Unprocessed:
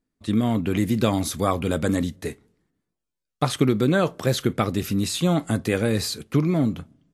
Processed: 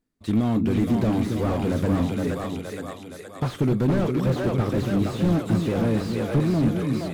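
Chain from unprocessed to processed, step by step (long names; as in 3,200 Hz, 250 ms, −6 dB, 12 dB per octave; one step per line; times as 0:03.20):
echo with a time of its own for lows and highs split 380 Hz, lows 277 ms, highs 468 ms, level −4.5 dB
slew-rate limiting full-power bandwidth 40 Hz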